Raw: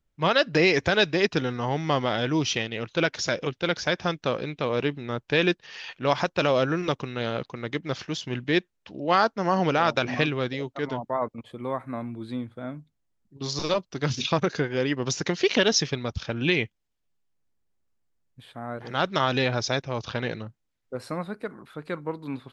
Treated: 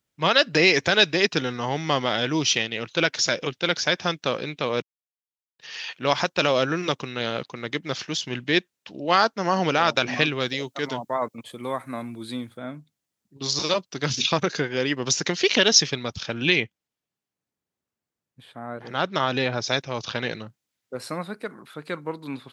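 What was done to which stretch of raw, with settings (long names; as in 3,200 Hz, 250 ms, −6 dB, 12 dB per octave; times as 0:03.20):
0:04.82–0:05.59: silence
0:10.40–0:12.57: high-shelf EQ 5,200 Hz +11 dB
0:16.60–0:19.68: high-shelf EQ 2,500 Hz −9 dB
whole clip: high-pass filter 120 Hz; high-shelf EQ 2,200 Hz +8.5 dB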